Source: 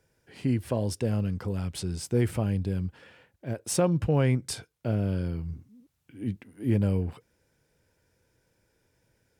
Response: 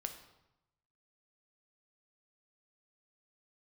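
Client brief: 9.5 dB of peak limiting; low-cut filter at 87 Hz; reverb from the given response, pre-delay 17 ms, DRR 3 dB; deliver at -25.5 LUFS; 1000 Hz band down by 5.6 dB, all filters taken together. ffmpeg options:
-filter_complex "[0:a]highpass=87,equalizer=f=1k:t=o:g=-8.5,alimiter=limit=-22.5dB:level=0:latency=1,asplit=2[a][b];[1:a]atrim=start_sample=2205,adelay=17[c];[b][c]afir=irnorm=-1:irlink=0,volume=-1.5dB[d];[a][d]amix=inputs=2:normalize=0,volume=6.5dB"

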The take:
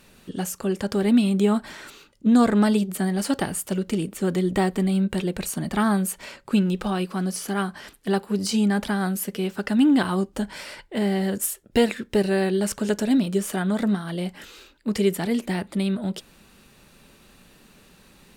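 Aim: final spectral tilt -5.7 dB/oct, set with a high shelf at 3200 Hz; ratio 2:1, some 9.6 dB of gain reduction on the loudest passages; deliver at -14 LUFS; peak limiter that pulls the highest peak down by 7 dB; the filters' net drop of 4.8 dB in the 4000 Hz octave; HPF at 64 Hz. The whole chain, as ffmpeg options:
-af "highpass=64,highshelf=f=3.2k:g=-3.5,equalizer=f=4k:t=o:g=-4,acompressor=threshold=-32dB:ratio=2,volume=19dB,alimiter=limit=-5dB:level=0:latency=1"

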